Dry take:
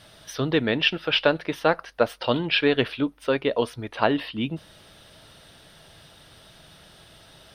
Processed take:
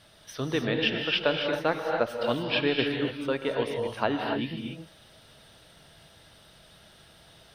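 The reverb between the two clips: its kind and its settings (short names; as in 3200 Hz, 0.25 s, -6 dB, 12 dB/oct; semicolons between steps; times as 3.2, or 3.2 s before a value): non-linear reverb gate 0.31 s rising, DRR 2 dB; gain -6 dB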